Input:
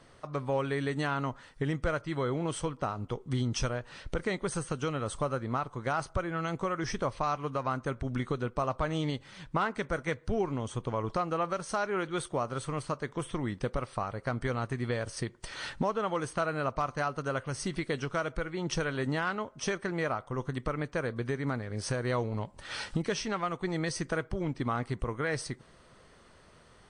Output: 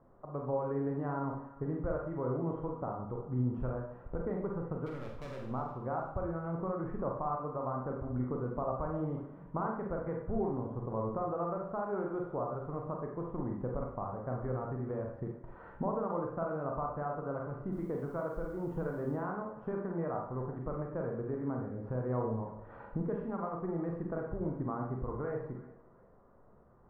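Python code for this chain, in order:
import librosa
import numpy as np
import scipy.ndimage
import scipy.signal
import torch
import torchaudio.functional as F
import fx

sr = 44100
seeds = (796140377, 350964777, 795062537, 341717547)

y = scipy.signal.sosfilt(scipy.signal.butter(4, 1100.0, 'lowpass', fs=sr, output='sos'), x)
y = fx.clip_hard(y, sr, threshold_db=-37.5, at=(4.86, 5.51))
y = fx.echo_thinned(y, sr, ms=355, feedback_pct=32, hz=700.0, wet_db=-17.5)
y = fx.quant_dither(y, sr, seeds[0], bits=12, dither='triangular', at=(17.71, 19.15), fade=0.02)
y = fx.rev_schroeder(y, sr, rt60_s=0.62, comb_ms=32, drr_db=0.0)
y = y * librosa.db_to_amplitude(-5.5)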